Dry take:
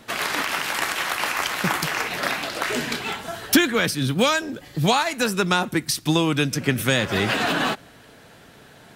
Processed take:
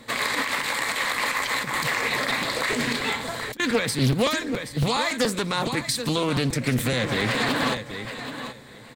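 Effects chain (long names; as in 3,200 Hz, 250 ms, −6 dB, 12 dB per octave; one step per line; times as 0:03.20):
notch filter 940 Hz, Q 14
repeating echo 777 ms, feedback 17%, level −12.5 dB
0:01.46–0:03.60: compressor whose output falls as the input rises −25 dBFS, ratio −0.5
brickwall limiter −14.5 dBFS, peak gain reduction 8.5 dB
EQ curve with evenly spaced ripples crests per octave 1, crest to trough 9 dB
regular buffer underruns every 0.14 s, samples 256, repeat, from 0:00.62
highs frequency-modulated by the lows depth 0.46 ms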